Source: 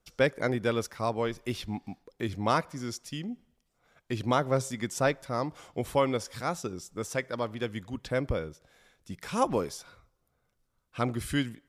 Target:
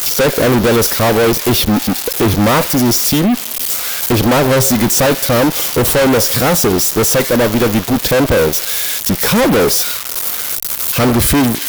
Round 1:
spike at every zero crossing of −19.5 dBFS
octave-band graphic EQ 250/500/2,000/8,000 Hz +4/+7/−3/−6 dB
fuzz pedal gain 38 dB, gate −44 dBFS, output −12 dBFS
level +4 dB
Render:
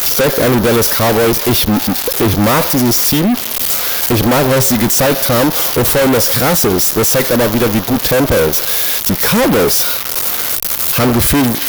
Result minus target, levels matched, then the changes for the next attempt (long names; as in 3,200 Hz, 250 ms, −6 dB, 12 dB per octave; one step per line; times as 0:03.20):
spike at every zero crossing: distortion +8 dB
change: spike at every zero crossing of −27.5 dBFS